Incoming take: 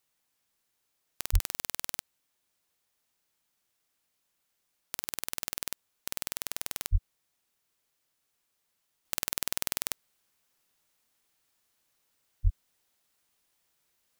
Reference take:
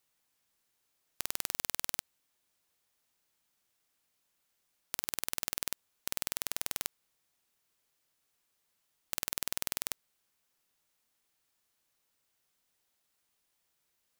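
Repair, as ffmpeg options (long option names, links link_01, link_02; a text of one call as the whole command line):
ffmpeg -i in.wav -filter_complex "[0:a]asplit=3[link_01][link_02][link_03];[link_01]afade=type=out:start_time=1.32:duration=0.02[link_04];[link_02]highpass=frequency=140:width=0.5412,highpass=frequency=140:width=1.3066,afade=type=in:start_time=1.32:duration=0.02,afade=type=out:start_time=1.44:duration=0.02[link_05];[link_03]afade=type=in:start_time=1.44:duration=0.02[link_06];[link_04][link_05][link_06]amix=inputs=3:normalize=0,asplit=3[link_07][link_08][link_09];[link_07]afade=type=out:start_time=6.91:duration=0.02[link_10];[link_08]highpass=frequency=140:width=0.5412,highpass=frequency=140:width=1.3066,afade=type=in:start_time=6.91:duration=0.02,afade=type=out:start_time=7.03:duration=0.02[link_11];[link_09]afade=type=in:start_time=7.03:duration=0.02[link_12];[link_10][link_11][link_12]amix=inputs=3:normalize=0,asplit=3[link_13][link_14][link_15];[link_13]afade=type=out:start_time=12.43:duration=0.02[link_16];[link_14]highpass=frequency=140:width=0.5412,highpass=frequency=140:width=1.3066,afade=type=in:start_time=12.43:duration=0.02,afade=type=out:start_time=12.55:duration=0.02[link_17];[link_15]afade=type=in:start_time=12.55:duration=0.02[link_18];[link_16][link_17][link_18]amix=inputs=3:normalize=0,asetnsamples=nb_out_samples=441:pad=0,asendcmd='9.05 volume volume -3.5dB',volume=0dB" out.wav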